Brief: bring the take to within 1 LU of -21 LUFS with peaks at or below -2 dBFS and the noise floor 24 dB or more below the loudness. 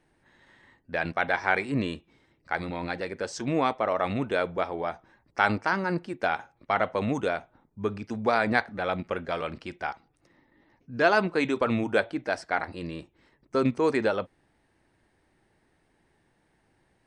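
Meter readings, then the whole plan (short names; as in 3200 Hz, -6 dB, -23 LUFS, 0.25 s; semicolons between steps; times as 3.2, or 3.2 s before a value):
loudness -28.5 LUFS; peak -6.5 dBFS; loudness target -21.0 LUFS
-> gain +7.5 dB; limiter -2 dBFS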